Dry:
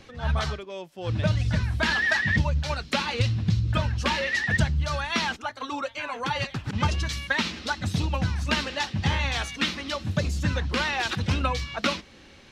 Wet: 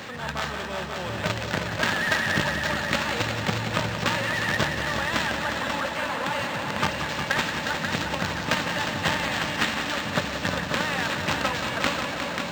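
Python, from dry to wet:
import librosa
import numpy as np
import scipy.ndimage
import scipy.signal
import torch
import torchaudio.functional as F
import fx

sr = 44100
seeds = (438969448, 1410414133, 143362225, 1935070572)

p1 = fx.bin_compress(x, sr, power=0.6)
p2 = fx.echo_wet_bandpass(p1, sr, ms=382, feedback_pct=83, hz=410.0, wet_db=-9.5)
p3 = fx.quant_companded(p2, sr, bits=2)
p4 = p2 + (p3 * 10.0 ** (-4.5 / 20.0))
p5 = scipy.signal.sosfilt(scipy.signal.butter(2, 140.0, 'highpass', fs=sr, output='sos'), p4)
p6 = fx.low_shelf(p5, sr, hz=460.0, db=-3.0)
p7 = p6 + fx.echo_heads(p6, sr, ms=179, heads='all three', feedback_pct=56, wet_db=-9, dry=0)
p8 = np.interp(np.arange(len(p7)), np.arange(len(p7))[::4], p7[::4])
y = p8 * 10.0 ** (-7.5 / 20.0)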